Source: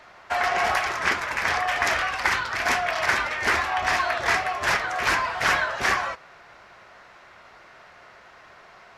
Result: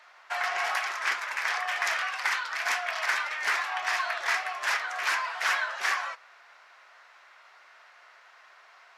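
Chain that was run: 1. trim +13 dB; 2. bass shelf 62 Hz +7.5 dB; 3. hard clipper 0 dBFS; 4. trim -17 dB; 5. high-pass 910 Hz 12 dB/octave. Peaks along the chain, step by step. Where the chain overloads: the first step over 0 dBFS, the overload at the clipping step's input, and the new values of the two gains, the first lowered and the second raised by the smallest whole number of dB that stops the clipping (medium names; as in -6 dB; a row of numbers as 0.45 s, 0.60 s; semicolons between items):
+5.5 dBFS, +5.5 dBFS, 0.0 dBFS, -17.0 dBFS, -13.5 dBFS; step 1, 5.5 dB; step 1 +7 dB, step 4 -11 dB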